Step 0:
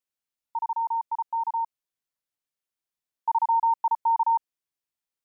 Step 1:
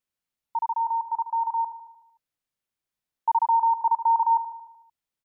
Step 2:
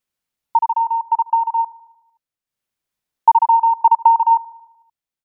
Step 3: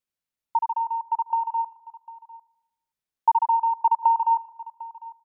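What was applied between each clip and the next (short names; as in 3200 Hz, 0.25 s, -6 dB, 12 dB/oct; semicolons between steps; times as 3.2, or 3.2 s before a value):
tone controls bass +5 dB, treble -3 dB; feedback echo 75 ms, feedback 59%, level -12 dB; gain +2.5 dB
transient shaper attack +9 dB, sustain -7 dB; gain +5 dB
echo 0.75 s -18.5 dB; gain -8 dB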